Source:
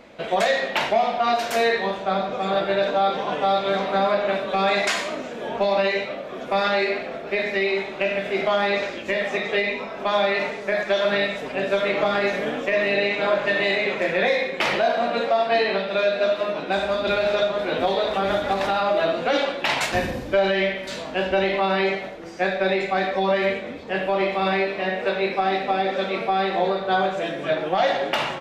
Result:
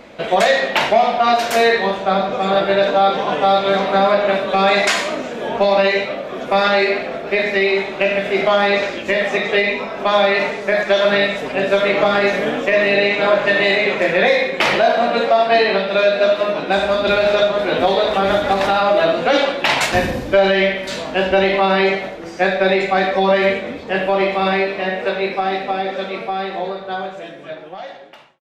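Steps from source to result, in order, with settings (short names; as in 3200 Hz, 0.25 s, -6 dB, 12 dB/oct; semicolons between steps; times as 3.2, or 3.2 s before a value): ending faded out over 4.71 s; gain +6.5 dB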